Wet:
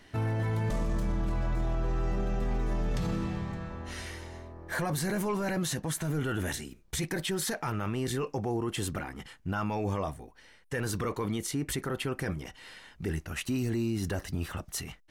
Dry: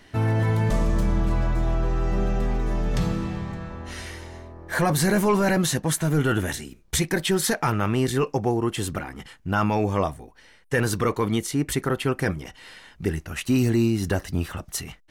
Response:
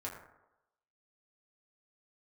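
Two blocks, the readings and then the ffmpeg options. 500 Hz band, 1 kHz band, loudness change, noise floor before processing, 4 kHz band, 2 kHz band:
-9.0 dB, -9.0 dB, -8.5 dB, -53 dBFS, -7.0 dB, -8.5 dB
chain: -af "alimiter=limit=-19.5dB:level=0:latency=1:release=12,volume=-4dB"

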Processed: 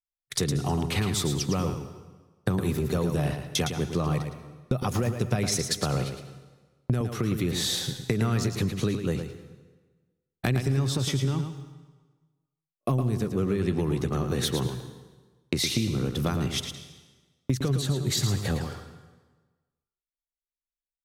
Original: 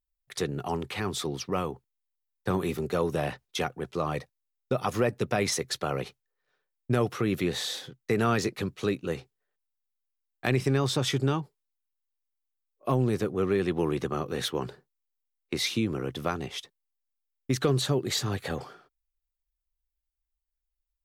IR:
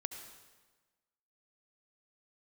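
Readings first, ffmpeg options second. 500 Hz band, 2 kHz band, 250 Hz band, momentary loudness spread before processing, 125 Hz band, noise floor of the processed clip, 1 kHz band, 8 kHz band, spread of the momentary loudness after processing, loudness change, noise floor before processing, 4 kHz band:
-2.0 dB, -1.5 dB, +2.0 dB, 10 LU, +5.5 dB, under -85 dBFS, -2.5 dB, +5.0 dB, 12 LU, +1.5 dB, -85 dBFS, +2.5 dB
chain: -filter_complex "[0:a]bass=f=250:g=12,treble=f=4k:g=7,agate=range=-36dB:threshold=-47dB:ratio=16:detection=peak,acompressor=threshold=-29dB:ratio=6,asplit=2[a][b];[1:a]atrim=start_sample=2205,adelay=111[c];[b][c]afir=irnorm=-1:irlink=0,volume=-5.5dB[d];[a][d]amix=inputs=2:normalize=0,volume=5dB"

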